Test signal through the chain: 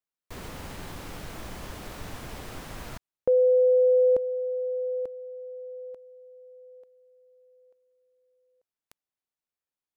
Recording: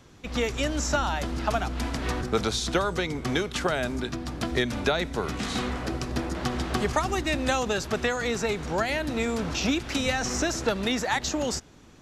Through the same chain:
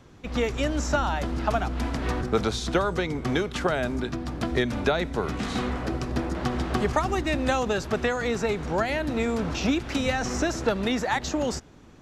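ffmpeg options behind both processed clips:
ffmpeg -i in.wav -af "highshelf=frequency=2600:gain=-7.5,volume=2dB" out.wav

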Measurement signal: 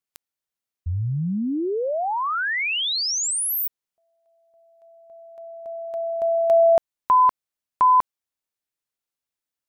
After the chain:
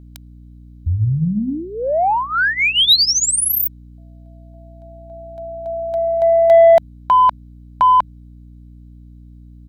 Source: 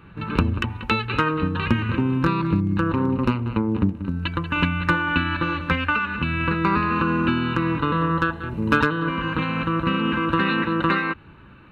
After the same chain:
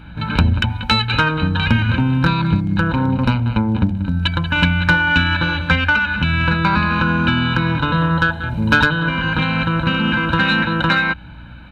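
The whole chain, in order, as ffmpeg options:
ffmpeg -i in.wav -af "equalizer=frequency=3800:width_type=o:width=0.48:gain=8,aecho=1:1:1.3:0.76,bandreject=frequency=48.31:width_type=h:width=4,bandreject=frequency=96.62:width_type=h:width=4,bandreject=frequency=144.93:width_type=h:width=4,bandreject=frequency=193.24:width_type=h:width=4,bandreject=frequency=241.55:width_type=h:width=4,acontrast=43,aeval=exprs='val(0)+0.0126*(sin(2*PI*60*n/s)+sin(2*PI*2*60*n/s)/2+sin(2*PI*3*60*n/s)/3+sin(2*PI*4*60*n/s)/4+sin(2*PI*5*60*n/s)/5)':channel_layout=same,volume=-1dB" out.wav

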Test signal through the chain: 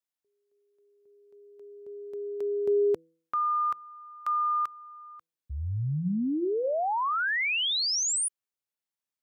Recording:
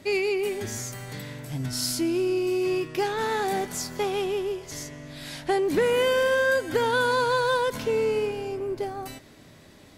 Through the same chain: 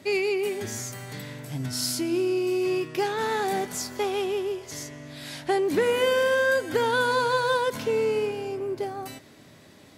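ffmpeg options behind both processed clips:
ffmpeg -i in.wav -af "highpass=92,bandreject=frequency=164.1:width_type=h:width=4,bandreject=frequency=328.2:width_type=h:width=4,bandreject=frequency=492.3:width_type=h:width=4" out.wav

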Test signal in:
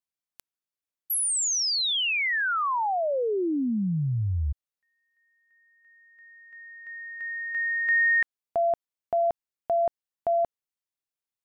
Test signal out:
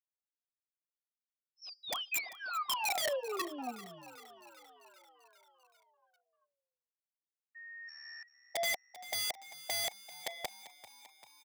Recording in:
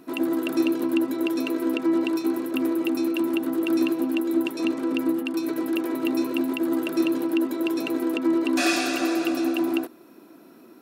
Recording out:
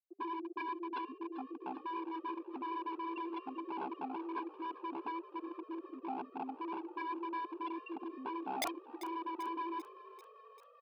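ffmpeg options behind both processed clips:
ffmpeg -i in.wav -filter_complex "[0:a]afftfilt=real='re*pow(10,7/40*sin(2*PI*(1.4*log(max(b,1)*sr/1024/100)/log(2)-(0.44)*(pts-256)/sr)))':imag='im*pow(10,7/40*sin(2*PI*(1.4*log(max(b,1)*sr/1024/100)/log(2)-(0.44)*(pts-256)/sr)))':win_size=1024:overlap=0.75,afftfilt=real='re*gte(hypot(re,im),0.501)':imag='im*gte(hypot(re,im),0.501)':win_size=1024:overlap=0.75,highpass=frequency=230:width=0.5412,highpass=frequency=230:width=1.3066,bandreject=frequency=396.4:width_type=h:width=4,bandreject=frequency=792.8:width_type=h:width=4,bandreject=frequency=1189.2:width_type=h:width=4,bandreject=frequency=1585.6:width_type=h:width=4,bandreject=frequency=1982:width_type=h:width=4,bandreject=frequency=2378.4:width_type=h:width=4,bandreject=frequency=2774.8:width_type=h:width=4,bandreject=frequency=3171.2:width_type=h:width=4,bandreject=frequency=3567.6:width_type=h:width=4,bandreject=frequency=3964:width_type=h:width=4,bandreject=frequency=4360.4:width_type=h:width=4,bandreject=frequency=4756.8:width_type=h:width=4,bandreject=frequency=5153.2:width_type=h:width=4,bandreject=frequency=5549.6:width_type=h:width=4,bandreject=frequency=5946:width_type=h:width=4,bandreject=frequency=6342.4:width_type=h:width=4,bandreject=frequency=6738.8:width_type=h:width=4,aresample=11025,aeval=exprs='0.0562*(abs(mod(val(0)/0.0562+3,4)-2)-1)':channel_layout=same,aresample=44100,asplit=3[link_01][link_02][link_03];[link_01]bandpass=frequency=730:width_type=q:width=8,volume=0dB[link_04];[link_02]bandpass=frequency=1090:width_type=q:width=8,volume=-6dB[link_05];[link_03]bandpass=frequency=2440:width_type=q:width=8,volume=-9dB[link_06];[link_04][link_05][link_06]amix=inputs=3:normalize=0,aeval=exprs='(mod(59.6*val(0)+1,2)-1)/59.6':channel_layout=same,asplit=2[link_07][link_08];[link_08]asplit=7[link_09][link_10][link_11][link_12][link_13][link_14][link_15];[link_09]adelay=392,afreqshift=51,volume=-16dB[link_16];[link_10]adelay=784,afreqshift=102,volume=-19.9dB[link_17];[link_11]adelay=1176,afreqshift=153,volume=-23.8dB[link_18];[link_12]adelay=1568,afreqshift=204,volume=-27.6dB[link_19];[link_13]adelay=1960,afreqshift=255,volume=-31.5dB[link_20];[link_14]adelay=2352,afreqshift=306,volume=-35.4dB[link_21];[link_15]adelay=2744,afreqshift=357,volume=-39.3dB[link_22];[link_16][link_17][link_18][link_19][link_20][link_21][link_22]amix=inputs=7:normalize=0[link_23];[link_07][link_23]amix=inputs=2:normalize=0,volume=7dB" out.wav

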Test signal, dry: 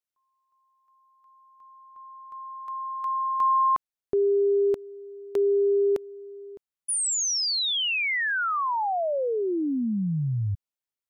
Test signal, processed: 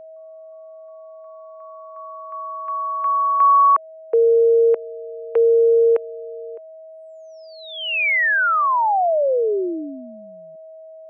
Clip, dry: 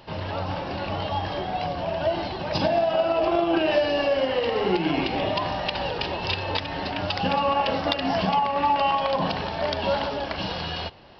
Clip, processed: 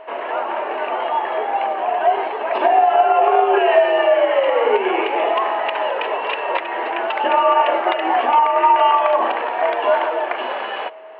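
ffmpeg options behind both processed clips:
ffmpeg -i in.wav -af "highpass=frequency=330:width_type=q:width=0.5412,highpass=frequency=330:width_type=q:width=1.307,lowpass=frequency=2500:width_type=q:width=0.5176,lowpass=frequency=2500:width_type=q:width=0.7071,lowpass=frequency=2500:width_type=q:width=1.932,afreqshift=60,aeval=exprs='val(0)+0.00501*sin(2*PI*640*n/s)':channel_layout=same,volume=8.5dB" out.wav

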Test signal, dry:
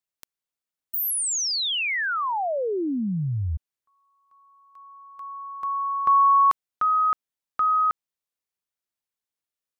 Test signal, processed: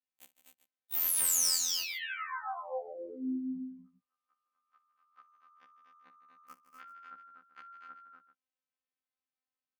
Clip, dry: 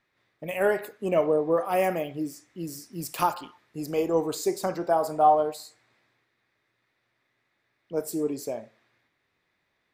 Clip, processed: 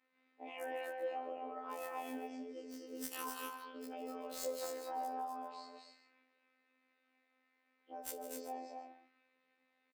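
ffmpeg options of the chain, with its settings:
ffmpeg -i in.wav -filter_complex "[0:a]acrossover=split=250|4200[link_01][link_02][link_03];[link_02]acompressor=threshold=-24dB:ratio=6:attack=1.9:release=205:knee=2.83:detection=peak[link_04];[link_01][link_04][link_03]amix=inputs=3:normalize=0,afreqshift=130,acrossover=split=4600[link_05][link_06];[link_05]acompressor=threshold=-34dB:ratio=6:attack=0.92:release=133:knee=1:detection=rms[link_07];[link_06]acrusher=bits=4:mix=0:aa=0.000001[link_08];[link_07][link_08]amix=inputs=2:normalize=0,aecho=1:1:56|160|242|249|267|389:0.126|0.224|0.447|0.316|0.398|0.168,afftfilt=real='hypot(re,im)*cos(PI*b)':imag='0':win_size=2048:overlap=0.75,equalizer=frequency=3900:width=5.5:gain=-3,afftfilt=real='re*1.73*eq(mod(b,3),0)':imag='im*1.73*eq(mod(b,3),0)':win_size=2048:overlap=0.75" out.wav

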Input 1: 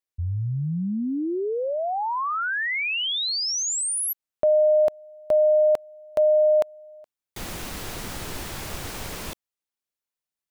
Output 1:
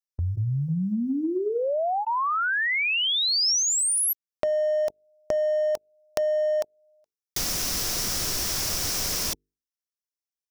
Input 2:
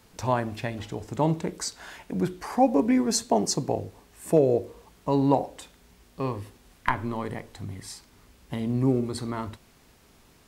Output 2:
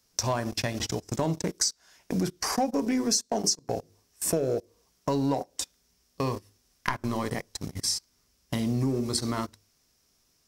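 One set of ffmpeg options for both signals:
ffmpeg -i in.wav -filter_complex "[0:a]highshelf=frequency=7700:gain=11,bandreject=frequency=870:width=12,asplit=2[link_01][link_02];[link_02]asoftclip=type=hard:threshold=-22dB,volume=-7.5dB[link_03];[link_01][link_03]amix=inputs=2:normalize=0,equalizer=frequency=5500:width_type=o:width=0.57:gain=13,bandreject=frequency=50:width_type=h:width=6,bandreject=frequency=100:width_type=h:width=6,bandreject=frequency=150:width_type=h:width=6,bandreject=frequency=200:width_type=h:width=6,bandreject=frequency=250:width_type=h:width=6,bandreject=frequency=300:width_type=h:width=6,bandreject=frequency=350:width_type=h:width=6,bandreject=frequency=400:width_type=h:width=6,bandreject=frequency=450:width_type=h:width=6,acompressor=threshold=-27dB:ratio=6:attack=12:release=234:knee=6:detection=rms,agate=range=-23dB:threshold=-35dB:ratio=16:release=51:detection=rms,volume=3.5dB" out.wav

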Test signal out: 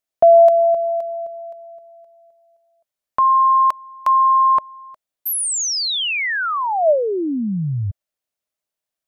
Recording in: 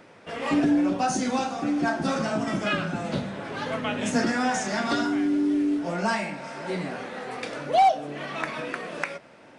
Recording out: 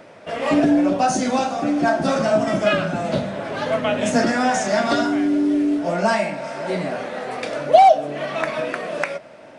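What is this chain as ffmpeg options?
ffmpeg -i in.wav -af "equalizer=frequency=620:width=4.6:gain=10,volume=4.5dB" out.wav

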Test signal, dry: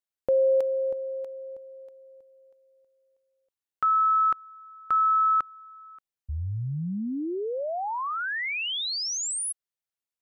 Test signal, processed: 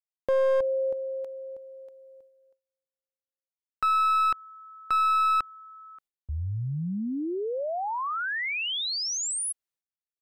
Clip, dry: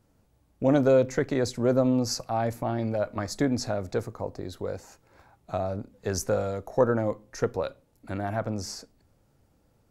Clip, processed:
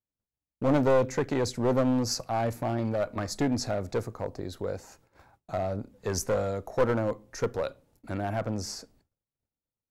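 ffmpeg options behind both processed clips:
ffmpeg -i in.wav -af "aeval=exprs='clip(val(0),-1,0.0708)':channel_layout=same,agate=range=-33dB:threshold=-53dB:ratio=3:release=192:detection=rms" out.wav

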